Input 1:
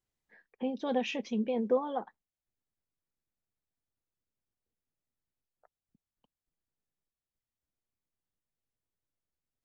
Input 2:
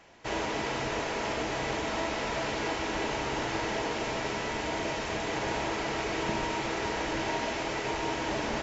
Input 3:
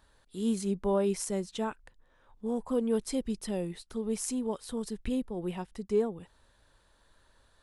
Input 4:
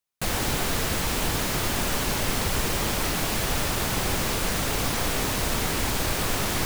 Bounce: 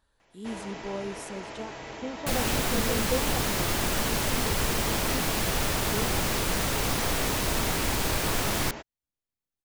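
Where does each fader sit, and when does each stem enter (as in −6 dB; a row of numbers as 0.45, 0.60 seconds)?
−2.5, −8.5, −7.5, −1.5 decibels; 1.40, 0.20, 0.00, 2.05 seconds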